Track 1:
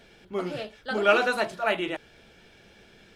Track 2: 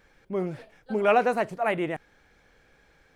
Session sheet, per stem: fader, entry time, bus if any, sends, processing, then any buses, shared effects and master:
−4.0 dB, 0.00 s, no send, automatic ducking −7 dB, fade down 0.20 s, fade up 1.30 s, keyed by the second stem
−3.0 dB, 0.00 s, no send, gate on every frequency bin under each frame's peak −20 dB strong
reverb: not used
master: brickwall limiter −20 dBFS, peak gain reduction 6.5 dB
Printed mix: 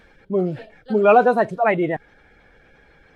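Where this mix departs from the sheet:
stem 2 −3.0 dB → +8.0 dB
master: missing brickwall limiter −20 dBFS, peak gain reduction 6.5 dB

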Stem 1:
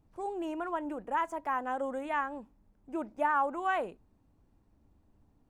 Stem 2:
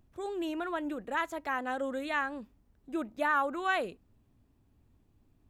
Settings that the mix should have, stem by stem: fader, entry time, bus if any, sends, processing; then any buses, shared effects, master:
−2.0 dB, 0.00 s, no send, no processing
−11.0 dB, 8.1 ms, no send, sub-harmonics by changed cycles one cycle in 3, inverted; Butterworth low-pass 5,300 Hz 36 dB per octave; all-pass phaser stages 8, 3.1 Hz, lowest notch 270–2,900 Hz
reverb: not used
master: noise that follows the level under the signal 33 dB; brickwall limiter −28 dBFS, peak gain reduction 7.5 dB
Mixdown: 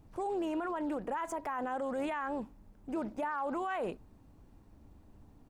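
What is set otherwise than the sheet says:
stem 1 −2.0 dB → +8.5 dB
master: missing noise that follows the level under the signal 33 dB

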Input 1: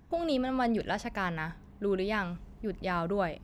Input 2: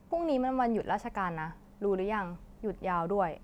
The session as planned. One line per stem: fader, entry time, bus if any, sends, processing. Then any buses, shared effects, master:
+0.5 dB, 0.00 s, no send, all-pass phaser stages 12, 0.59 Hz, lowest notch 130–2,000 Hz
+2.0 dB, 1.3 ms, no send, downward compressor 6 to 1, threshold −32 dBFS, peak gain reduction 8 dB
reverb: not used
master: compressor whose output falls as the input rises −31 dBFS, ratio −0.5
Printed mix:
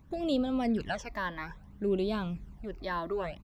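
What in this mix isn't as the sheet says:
stem 2 +2.0 dB → −10.0 dB
master: missing compressor whose output falls as the input rises −31 dBFS, ratio −0.5

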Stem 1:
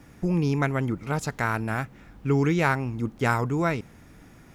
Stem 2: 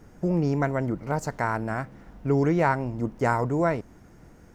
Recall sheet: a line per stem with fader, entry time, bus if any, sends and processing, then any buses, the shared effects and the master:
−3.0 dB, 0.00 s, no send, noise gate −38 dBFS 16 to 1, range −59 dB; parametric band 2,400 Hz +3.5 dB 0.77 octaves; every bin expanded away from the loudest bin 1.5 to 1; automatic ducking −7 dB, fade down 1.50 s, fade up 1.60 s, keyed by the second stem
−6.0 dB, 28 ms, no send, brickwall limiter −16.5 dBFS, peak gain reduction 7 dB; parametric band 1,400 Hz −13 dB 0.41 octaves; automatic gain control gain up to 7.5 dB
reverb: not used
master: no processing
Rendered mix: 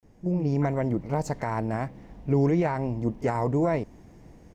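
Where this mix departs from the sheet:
stem 1 −3.0 dB → −13.0 dB
master: extra high-shelf EQ 7,500 Hz −7.5 dB

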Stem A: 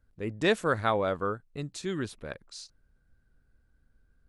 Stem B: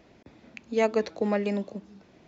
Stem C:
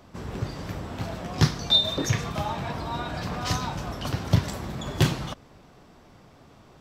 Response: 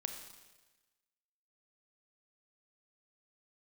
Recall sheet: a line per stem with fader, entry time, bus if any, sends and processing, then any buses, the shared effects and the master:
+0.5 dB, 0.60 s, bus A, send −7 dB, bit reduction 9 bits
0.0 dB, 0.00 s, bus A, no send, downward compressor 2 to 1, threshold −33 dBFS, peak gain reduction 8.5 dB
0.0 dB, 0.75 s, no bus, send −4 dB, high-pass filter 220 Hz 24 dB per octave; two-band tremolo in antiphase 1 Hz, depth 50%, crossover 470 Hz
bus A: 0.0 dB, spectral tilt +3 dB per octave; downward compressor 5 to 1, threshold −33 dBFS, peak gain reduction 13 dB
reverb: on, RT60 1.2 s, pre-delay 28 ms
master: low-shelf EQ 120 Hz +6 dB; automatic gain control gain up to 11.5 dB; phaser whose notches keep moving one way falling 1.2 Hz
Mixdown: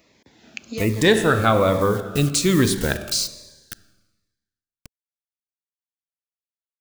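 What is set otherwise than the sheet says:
stem A +0.5 dB → +11.5 dB
stem C: muted

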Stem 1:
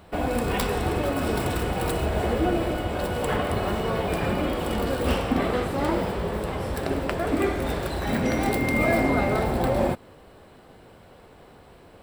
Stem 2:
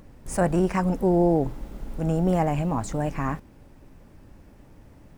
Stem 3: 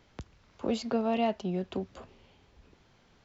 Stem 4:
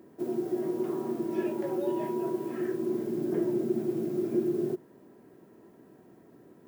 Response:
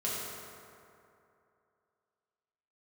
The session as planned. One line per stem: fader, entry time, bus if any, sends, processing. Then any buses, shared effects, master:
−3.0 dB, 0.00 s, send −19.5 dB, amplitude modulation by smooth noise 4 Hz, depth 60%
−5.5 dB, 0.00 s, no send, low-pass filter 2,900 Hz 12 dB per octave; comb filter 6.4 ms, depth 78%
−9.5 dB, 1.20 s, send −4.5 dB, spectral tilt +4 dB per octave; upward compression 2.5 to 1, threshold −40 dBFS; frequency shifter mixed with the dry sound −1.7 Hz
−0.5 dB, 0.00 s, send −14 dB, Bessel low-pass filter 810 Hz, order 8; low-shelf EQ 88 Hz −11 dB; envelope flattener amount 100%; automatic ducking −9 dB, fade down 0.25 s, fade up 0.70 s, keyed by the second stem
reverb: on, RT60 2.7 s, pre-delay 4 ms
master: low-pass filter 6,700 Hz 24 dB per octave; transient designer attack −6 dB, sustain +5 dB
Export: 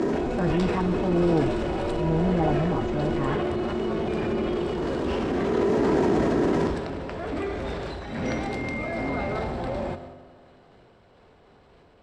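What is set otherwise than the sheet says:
stem 3: muted
stem 4: missing Bessel low-pass filter 810 Hz, order 8

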